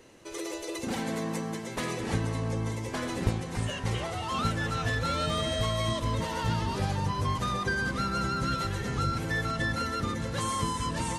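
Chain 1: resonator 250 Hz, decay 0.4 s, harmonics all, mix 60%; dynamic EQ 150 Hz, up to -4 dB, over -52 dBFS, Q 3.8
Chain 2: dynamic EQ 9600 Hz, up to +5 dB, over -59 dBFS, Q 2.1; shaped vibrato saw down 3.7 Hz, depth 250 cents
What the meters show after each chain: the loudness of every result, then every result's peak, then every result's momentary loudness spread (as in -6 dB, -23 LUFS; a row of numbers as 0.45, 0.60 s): -38.0, -30.5 LUFS; -20.0, -12.5 dBFS; 5, 5 LU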